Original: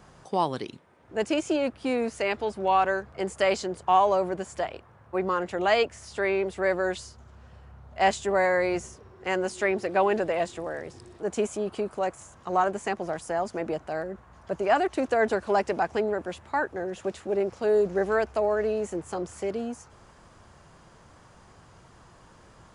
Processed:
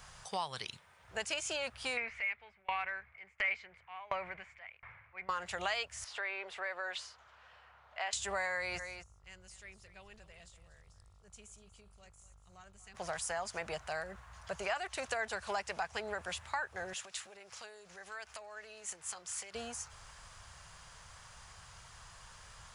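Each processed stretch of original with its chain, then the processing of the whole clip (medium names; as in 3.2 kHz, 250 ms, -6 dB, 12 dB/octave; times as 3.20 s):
1.97–5.29 s: resonant low-pass 2.2 kHz, resonance Q 9.7 + transient shaper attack -8 dB, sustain +2 dB + sawtooth tremolo in dB decaying 1.4 Hz, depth 30 dB
6.04–8.13 s: three-band isolator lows -23 dB, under 320 Hz, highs -18 dB, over 3.8 kHz + compression 2:1, threshold -35 dBFS
8.78–12.94 s: amplifier tone stack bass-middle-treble 10-0-1 + mains buzz 50 Hz, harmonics 28, -64 dBFS -5 dB/octave + delay 240 ms -14.5 dB
16.93–19.55 s: peaking EQ 620 Hz -4.5 dB 2.2 oct + compression 10:1, threshold -37 dBFS + high-pass 450 Hz 6 dB/octave
whole clip: amplifier tone stack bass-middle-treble 10-0-10; compression 4:1, threshold -42 dBFS; trim +7.5 dB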